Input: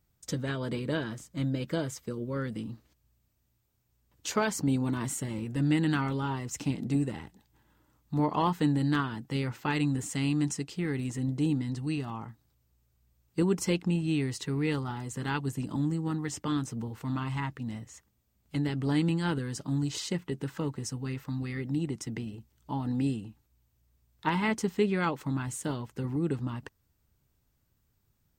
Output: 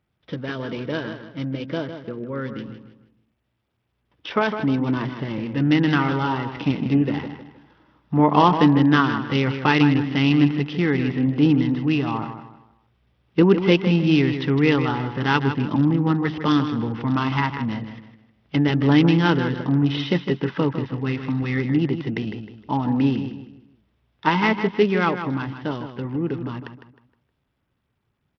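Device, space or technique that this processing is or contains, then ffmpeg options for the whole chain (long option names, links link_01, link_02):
Bluetooth headset: -filter_complex "[0:a]asettb=1/sr,asplit=3[link_01][link_02][link_03];[link_01]atrim=end=19.234[link_04];[link_02]atrim=start=19.23:end=20.37,asetpts=PTS-STARTPTS,afade=type=in:duration=0.004:curve=qsin,afade=type=out:start_time=1.136:duration=0.004:curve=qsin,lowpass=frequency=7100:width=0.5412,lowpass=frequency=7100:width=1.3066[link_05];[link_03]atrim=start=20.366[link_06];[link_04][link_05]acrossfade=duration=0.004:curve1=hsin:curve2=qsin[link_07];[link_07][link_06]acrossfade=duration=0.004:curve1=qsin:curve2=hsin,highpass=frequency=180:poles=1,asplit=2[link_08][link_09];[link_09]adelay=156,lowpass=frequency=4400:poles=1,volume=-9dB,asplit=2[link_10][link_11];[link_11]adelay=156,lowpass=frequency=4400:poles=1,volume=0.35,asplit=2[link_12][link_13];[link_13]adelay=156,lowpass=frequency=4400:poles=1,volume=0.35,asplit=2[link_14][link_15];[link_15]adelay=156,lowpass=frequency=4400:poles=1,volume=0.35[link_16];[link_08][link_10][link_12][link_14][link_16]amix=inputs=5:normalize=0,dynaudnorm=framelen=670:gausssize=17:maxgain=8dB,aresample=8000,aresample=44100,volume=5dB" -ar 44100 -c:a sbc -b:a 64k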